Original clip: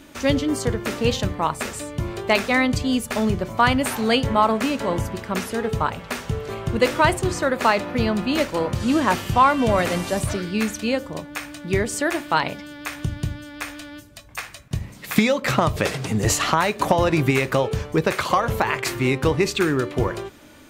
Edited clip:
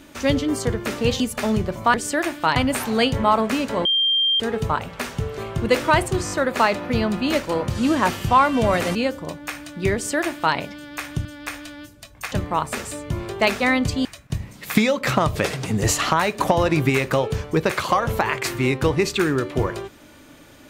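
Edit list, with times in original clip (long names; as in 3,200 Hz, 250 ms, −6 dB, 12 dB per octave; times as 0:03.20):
0:01.20–0:02.93: move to 0:14.46
0:04.96–0:05.51: beep over 3,180 Hz −16 dBFS
0:07.36: stutter 0.02 s, 4 plays
0:10.00–0:10.83: remove
0:11.82–0:12.44: duplicate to 0:03.67
0:13.13–0:13.39: remove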